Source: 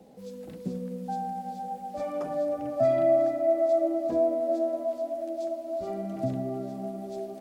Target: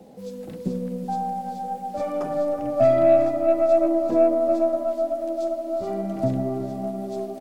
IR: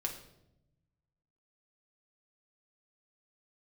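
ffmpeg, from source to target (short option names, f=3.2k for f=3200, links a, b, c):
-filter_complex "[0:a]aeval=exprs='0.237*(cos(1*acos(clip(val(0)/0.237,-1,1)))-cos(1*PI/2))+0.00668*(cos(6*acos(clip(val(0)/0.237,-1,1)))-cos(6*PI/2))':c=same,aecho=1:1:372:0.188,asplit=2[a][b];[1:a]atrim=start_sample=2205,lowpass=1.5k[c];[b][c]afir=irnorm=-1:irlink=0,volume=-16dB[d];[a][d]amix=inputs=2:normalize=0,volume=5dB"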